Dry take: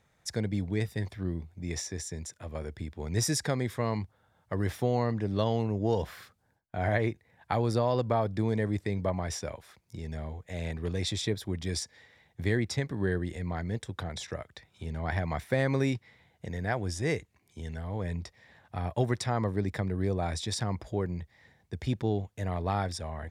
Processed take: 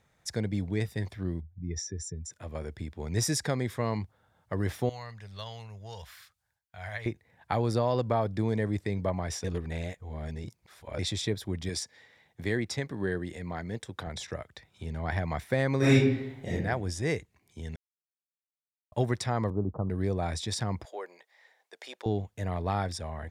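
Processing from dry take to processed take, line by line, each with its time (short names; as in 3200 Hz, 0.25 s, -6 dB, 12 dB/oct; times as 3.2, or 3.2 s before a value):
1.4–2.31 spectral contrast raised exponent 1.8
4.89–7.06 passive tone stack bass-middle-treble 10-0-10
9.44–10.99 reverse
11.69–14.07 HPF 160 Hz 6 dB/oct
15.78–16.52 reverb throw, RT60 0.81 s, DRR -10.5 dB
17.76–18.92 mute
19.5–19.9 steep low-pass 1300 Hz 96 dB/oct
20.85–22.06 HPF 510 Hz 24 dB/oct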